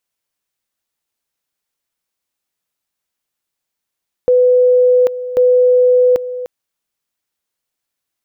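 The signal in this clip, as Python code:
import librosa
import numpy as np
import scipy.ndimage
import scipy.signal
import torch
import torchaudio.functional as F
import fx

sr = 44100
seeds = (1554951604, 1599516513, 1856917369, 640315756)

y = fx.two_level_tone(sr, hz=499.0, level_db=-7.0, drop_db=13.5, high_s=0.79, low_s=0.3, rounds=2)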